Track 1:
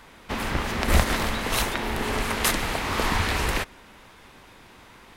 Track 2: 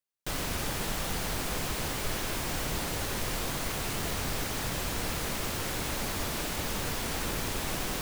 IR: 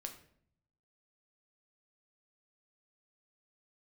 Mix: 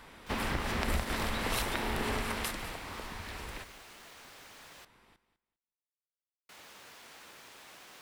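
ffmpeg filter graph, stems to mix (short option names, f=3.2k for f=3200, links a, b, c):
-filter_complex "[0:a]bandreject=f=6.5k:w=14,acompressor=threshold=-25dB:ratio=6,volume=-3.5dB,afade=t=out:st=2.07:d=0.74:silence=0.298538,asplit=2[a][b];[b]volume=-14.5dB[c];[1:a]highpass=f=1.2k:p=1,highshelf=f=5.5k:g=-10,volume=-13dB,asplit=3[d][e][f];[d]atrim=end=4.85,asetpts=PTS-STARTPTS,afade=t=out:st=4.846:d=0.004:c=hsin[g];[e]atrim=start=4.85:end=6.49,asetpts=PTS-STARTPTS,volume=0[h];[f]atrim=start=6.49,asetpts=PTS-STARTPTS,afade=t=in:d=0.004:c=hsin[i];[g][h][i]concat=n=3:v=0:a=1[j];[c]aecho=0:1:200|400|600:1|0.2|0.04[k];[a][j][k]amix=inputs=3:normalize=0"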